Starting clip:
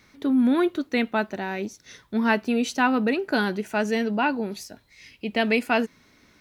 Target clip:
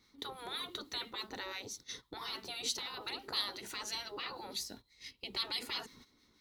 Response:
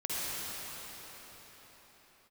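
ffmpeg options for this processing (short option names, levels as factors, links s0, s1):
-filter_complex "[0:a]agate=range=0.2:threshold=0.00447:ratio=16:detection=peak,afftfilt=real='re*lt(hypot(re,im),0.1)':imag='im*lt(hypot(re,im),0.1)':win_size=1024:overlap=0.75,acrossover=split=1300[s0][s1];[s0]aeval=exprs='val(0)*(1-0.5/2+0.5/2*cos(2*PI*6*n/s))':c=same[s2];[s1]aeval=exprs='val(0)*(1-0.5/2-0.5/2*cos(2*PI*6*n/s))':c=same[s3];[s2][s3]amix=inputs=2:normalize=0,asplit=2[s4][s5];[s5]acompressor=threshold=0.00224:ratio=6,volume=1.12[s6];[s4][s6]amix=inputs=2:normalize=0,equalizer=f=100:t=o:w=0.33:g=-4,equalizer=f=160:t=o:w=0.33:g=-7,equalizer=f=630:t=o:w=0.33:g=-10,equalizer=f=1600:t=o:w=0.33:g=-9,equalizer=f=2500:t=o:w=0.33:g=-8,equalizer=f=4000:t=o:w=0.33:g=7,volume=0.891"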